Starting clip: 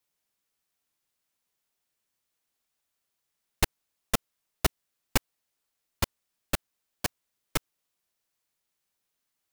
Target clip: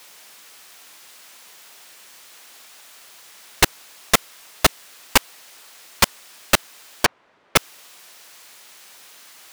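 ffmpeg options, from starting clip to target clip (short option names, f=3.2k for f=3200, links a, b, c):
-filter_complex "[0:a]asplit=2[a][b];[b]highpass=f=720:p=1,volume=40dB,asoftclip=type=tanh:threshold=-8dB[c];[a][c]amix=inputs=2:normalize=0,lowpass=f=6.4k:p=1,volume=-6dB,asettb=1/sr,asplit=3[d][e][f];[d]atrim=end=7.054[g];[e]atrim=start=7.05:end=7.56,asetpts=PTS-STARTPTS,afade=t=in:d=0.004:c=qsin,afade=t=out:st=0.506:d=0.004:c=qsin,adynamicsmooth=sensitivity=1:basefreq=1.3k[h];[f]atrim=start=7.556[i];[g][h]acrossfade=d=0.004:c1=hsin:c2=qsin[j];[j][i]acrossfade=d=0.004:c1=qsin:c2=hsin,volume=5.5dB"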